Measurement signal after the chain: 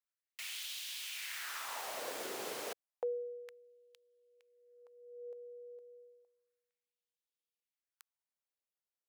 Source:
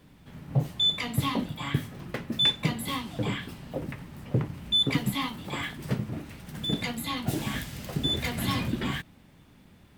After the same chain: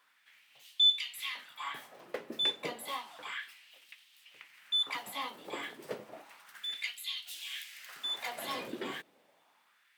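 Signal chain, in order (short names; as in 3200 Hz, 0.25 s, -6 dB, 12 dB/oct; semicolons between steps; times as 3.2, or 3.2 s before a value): LFO high-pass sine 0.31 Hz 410–3200 Hz; gain -7.5 dB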